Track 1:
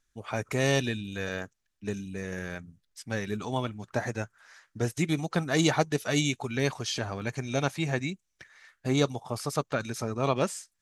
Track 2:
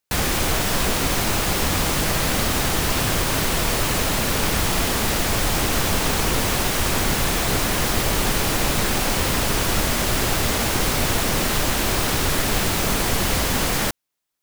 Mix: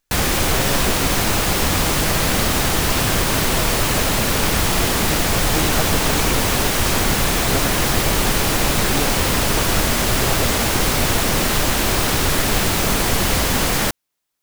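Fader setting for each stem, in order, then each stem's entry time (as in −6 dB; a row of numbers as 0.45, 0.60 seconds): −2.0, +3.0 decibels; 0.00, 0.00 seconds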